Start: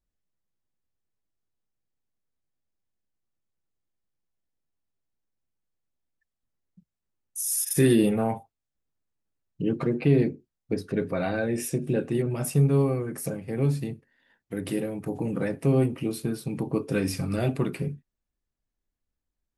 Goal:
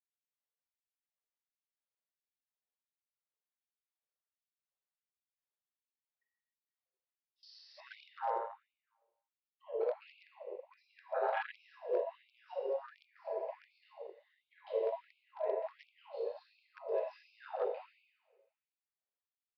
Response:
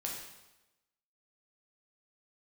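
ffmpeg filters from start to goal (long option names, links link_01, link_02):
-filter_complex "[0:a]acompressor=threshold=-39dB:ratio=3,highpass=210[link_01];[1:a]atrim=start_sample=2205,asetrate=33516,aresample=44100[link_02];[link_01][link_02]afir=irnorm=-1:irlink=0,afwtdn=0.00891,lowpass=frequency=4300:width=0.5412,lowpass=frequency=4300:width=1.3066,bandreject=frequency=570:width=16,aecho=1:1:171|342|513:0.0794|0.035|0.0154,afreqshift=130,aresample=11025,volume=28.5dB,asoftclip=hard,volume=-28.5dB,aresample=44100,afftfilt=real='re*gte(b*sr/1024,380*pow(2200/380,0.5+0.5*sin(2*PI*1.4*pts/sr)))':imag='im*gte(b*sr/1024,380*pow(2200/380,0.5+0.5*sin(2*PI*1.4*pts/sr)))':win_size=1024:overlap=0.75,volume=5.5dB"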